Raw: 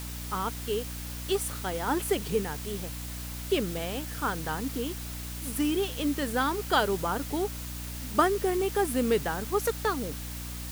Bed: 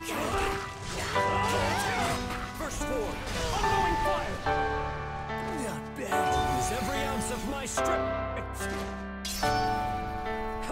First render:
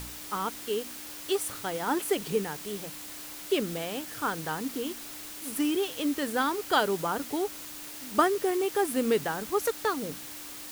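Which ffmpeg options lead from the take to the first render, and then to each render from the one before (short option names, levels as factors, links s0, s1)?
-af "bandreject=f=60:t=h:w=4,bandreject=f=120:t=h:w=4,bandreject=f=180:t=h:w=4,bandreject=f=240:t=h:w=4"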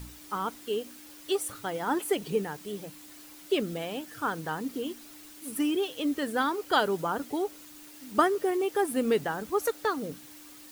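-af "afftdn=nr=9:nf=-42"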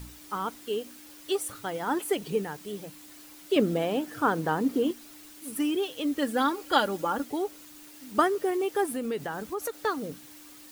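-filter_complex "[0:a]asettb=1/sr,asplit=3[s0][s1][s2];[s0]atrim=end=3.564[s3];[s1]atrim=start=3.56:end=4.91,asetpts=PTS-STARTPTS,afade=t=in:d=0.004:c=qsin,afade=t=out:st=1.346:d=0.004:c=qsin,equalizer=f=380:w=0.32:g=8.5[s4];[s2]atrim=start=4.906[s5];[s3][s4]acrossfade=d=0.004:c1=hsin:c2=qsin[s6];[s6][s5]acrossfade=d=0.004:c1=qsin:c2=hsin,asettb=1/sr,asplit=3[s7][s8][s9];[s7]atrim=end=6.184[s10];[s8]atrim=start=6.18:end=7.24,asetpts=PTS-STARTPTS,afade=t=in:d=0.004:c=qsin,afade=t=out:st=1.056:d=0.004:c=qsin,aecho=1:1:3.6:0.64,atrim=end_sample=46746[s11];[s9]atrim=start=7.236[s12];[s10][s11]acrossfade=d=0.004:c1=hsin:c2=qsin[s13];[s13][s12]acrossfade=d=0.004:c1=qsin:c2=hsin,asettb=1/sr,asplit=3[s14][s15][s16];[s14]atrim=end=8.934[s17];[s15]atrim=start=8.93:end=9.79,asetpts=PTS-STARTPTS,afade=t=in:d=0.004:c=qsin,afade=t=out:st=0.856:d=0.004:c=qsin,acompressor=threshold=0.0355:ratio=3:attack=3.2:release=140:knee=1:detection=peak[s18];[s16]atrim=start=9.786[s19];[s17][s18]acrossfade=d=0.004:c1=hsin:c2=qsin[s20];[s20][s19]acrossfade=d=0.004:c1=qsin:c2=hsin"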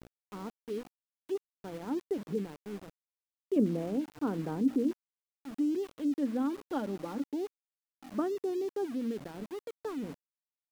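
-af "bandpass=f=230:t=q:w=1.5:csg=0,aeval=exprs='val(0)*gte(abs(val(0)),0.00631)':c=same"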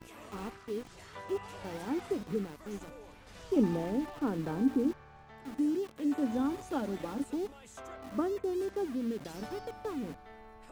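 -filter_complex "[1:a]volume=0.112[s0];[0:a][s0]amix=inputs=2:normalize=0"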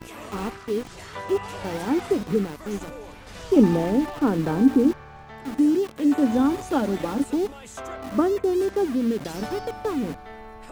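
-af "volume=3.55"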